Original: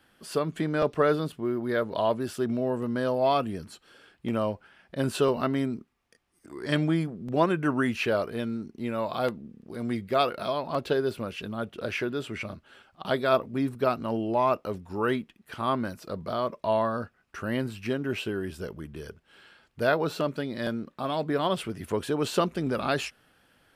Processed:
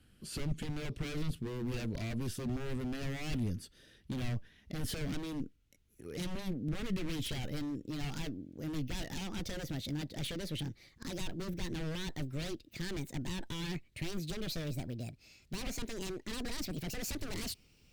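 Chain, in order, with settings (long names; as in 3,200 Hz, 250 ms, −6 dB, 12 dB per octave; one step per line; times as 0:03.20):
gliding playback speed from 95% → 170%
brickwall limiter −21 dBFS, peak gain reduction 11.5 dB
wave folding −30 dBFS
guitar amp tone stack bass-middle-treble 10-0-1
level +18 dB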